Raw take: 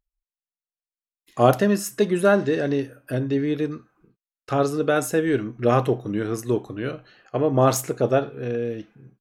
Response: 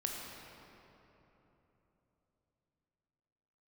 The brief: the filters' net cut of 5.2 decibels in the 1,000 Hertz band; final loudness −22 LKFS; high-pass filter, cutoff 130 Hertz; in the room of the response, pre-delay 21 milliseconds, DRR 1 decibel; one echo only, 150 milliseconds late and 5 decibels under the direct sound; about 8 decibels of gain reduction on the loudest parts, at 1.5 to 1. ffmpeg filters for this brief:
-filter_complex "[0:a]highpass=130,equalizer=frequency=1000:width_type=o:gain=-8,acompressor=threshold=-37dB:ratio=1.5,aecho=1:1:150:0.562,asplit=2[link_01][link_02];[1:a]atrim=start_sample=2205,adelay=21[link_03];[link_02][link_03]afir=irnorm=-1:irlink=0,volume=-3dB[link_04];[link_01][link_04]amix=inputs=2:normalize=0,volume=5dB"

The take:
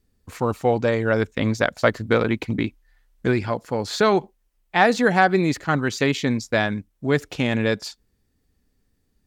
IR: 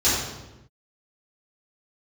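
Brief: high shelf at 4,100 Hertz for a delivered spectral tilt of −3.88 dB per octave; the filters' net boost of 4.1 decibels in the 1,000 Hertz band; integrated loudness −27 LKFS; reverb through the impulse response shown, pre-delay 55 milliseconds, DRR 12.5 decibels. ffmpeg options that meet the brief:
-filter_complex "[0:a]equalizer=frequency=1000:width_type=o:gain=5.5,highshelf=frequency=4100:gain=6.5,asplit=2[link_01][link_02];[1:a]atrim=start_sample=2205,adelay=55[link_03];[link_02][link_03]afir=irnorm=-1:irlink=0,volume=-29.5dB[link_04];[link_01][link_04]amix=inputs=2:normalize=0,volume=-7dB"

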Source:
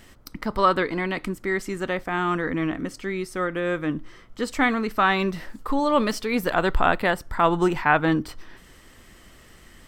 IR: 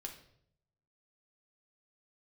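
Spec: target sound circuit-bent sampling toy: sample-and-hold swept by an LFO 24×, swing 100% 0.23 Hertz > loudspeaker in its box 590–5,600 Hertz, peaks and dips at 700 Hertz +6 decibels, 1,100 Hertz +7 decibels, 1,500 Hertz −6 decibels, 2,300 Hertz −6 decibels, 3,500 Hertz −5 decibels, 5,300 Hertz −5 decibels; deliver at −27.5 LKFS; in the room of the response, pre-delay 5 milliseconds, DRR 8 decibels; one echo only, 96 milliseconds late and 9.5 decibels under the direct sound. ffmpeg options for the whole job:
-filter_complex "[0:a]aecho=1:1:96:0.335,asplit=2[link_01][link_02];[1:a]atrim=start_sample=2205,adelay=5[link_03];[link_02][link_03]afir=irnorm=-1:irlink=0,volume=-5dB[link_04];[link_01][link_04]amix=inputs=2:normalize=0,acrusher=samples=24:mix=1:aa=0.000001:lfo=1:lforange=24:lforate=0.23,highpass=590,equalizer=frequency=700:width_type=q:width=4:gain=6,equalizer=frequency=1100:width_type=q:width=4:gain=7,equalizer=frequency=1500:width_type=q:width=4:gain=-6,equalizer=frequency=2300:width_type=q:width=4:gain=-6,equalizer=frequency=3500:width_type=q:width=4:gain=-5,equalizer=frequency=5300:width_type=q:width=4:gain=-5,lowpass=frequency=5600:width=0.5412,lowpass=frequency=5600:width=1.3066,volume=-2.5dB"

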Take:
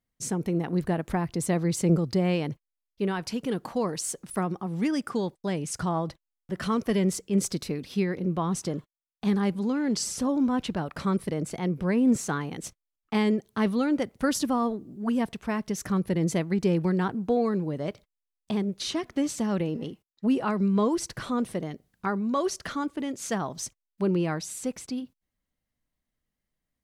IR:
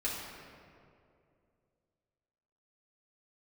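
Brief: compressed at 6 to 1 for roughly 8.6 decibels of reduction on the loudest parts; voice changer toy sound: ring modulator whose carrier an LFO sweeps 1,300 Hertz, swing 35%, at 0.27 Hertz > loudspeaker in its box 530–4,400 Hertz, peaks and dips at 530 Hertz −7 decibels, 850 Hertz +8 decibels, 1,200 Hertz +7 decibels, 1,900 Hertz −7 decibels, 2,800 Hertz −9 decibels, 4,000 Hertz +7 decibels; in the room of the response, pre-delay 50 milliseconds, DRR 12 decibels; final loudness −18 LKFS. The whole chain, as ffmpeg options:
-filter_complex "[0:a]acompressor=threshold=-27dB:ratio=6,asplit=2[link_01][link_02];[1:a]atrim=start_sample=2205,adelay=50[link_03];[link_02][link_03]afir=irnorm=-1:irlink=0,volume=-17dB[link_04];[link_01][link_04]amix=inputs=2:normalize=0,aeval=exprs='val(0)*sin(2*PI*1300*n/s+1300*0.35/0.27*sin(2*PI*0.27*n/s))':channel_layout=same,highpass=530,equalizer=frequency=530:width_type=q:width=4:gain=-7,equalizer=frequency=850:width_type=q:width=4:gain=8,equalizer=frequency=1200:width_type=q:width=4:gain=7,equalizer=frequency=1900:width_type=q:width=4:gain=-7,equalizer=frequency=2800:width_type=q:width=4:gain=-9,equalizer=frequency=4000:width_type=q:width=4:gain=7,lowpass=frequency=4400:width=0.5412,lowpass=frequency=4400:width=1.3066,volume=14dB"

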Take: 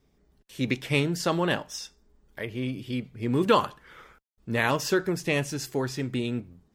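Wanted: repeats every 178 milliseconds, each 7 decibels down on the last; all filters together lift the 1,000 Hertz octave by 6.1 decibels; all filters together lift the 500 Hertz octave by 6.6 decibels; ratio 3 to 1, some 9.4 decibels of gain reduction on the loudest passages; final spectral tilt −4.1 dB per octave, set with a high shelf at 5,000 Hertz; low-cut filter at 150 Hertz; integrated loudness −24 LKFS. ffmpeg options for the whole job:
ffmpeg -i in.wav -af "highpass=150,equalizer=frequency=500:width_type=o:gain=7,equalizer=frequency=1000:width_type=o:gain=5,highshelf=frequency=5000:gain=7,acompressor=threshold=-22dB:ratio=3,aecho=1:1:178|356|534|712|890:0.447|0.201|0.0905|0.0407|0.0183,volume=3.5dB" out.wav

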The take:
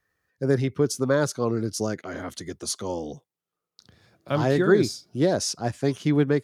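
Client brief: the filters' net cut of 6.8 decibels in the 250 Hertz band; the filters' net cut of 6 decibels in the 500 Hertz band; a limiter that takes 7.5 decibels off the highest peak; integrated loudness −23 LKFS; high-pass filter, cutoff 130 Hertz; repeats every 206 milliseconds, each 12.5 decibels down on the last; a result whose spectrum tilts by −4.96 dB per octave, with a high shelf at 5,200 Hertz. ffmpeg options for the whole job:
ffmpeg -i in.wav -af "highpass=130,equalizer=frequency=250:width_type=o:gain=-7,equalizer=frequency=500:width_type=o:gain=-5,highshelf=frequency=5200:gain=-9,alimiter=limit=-19.5dB:level=0:latency=1,aecho=1:1:206|412|618:0.237|0.0569|0.0137,volume=9.5dB" out.wav

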